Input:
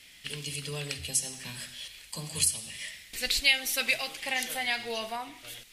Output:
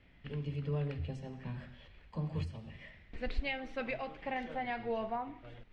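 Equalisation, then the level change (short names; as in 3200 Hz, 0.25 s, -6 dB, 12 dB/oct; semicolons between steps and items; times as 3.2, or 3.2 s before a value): LPF 1100 Hz 12 dB/oct; air absorption 67 m; low shelf 160 Hz +8.5 dB; 0.0 dB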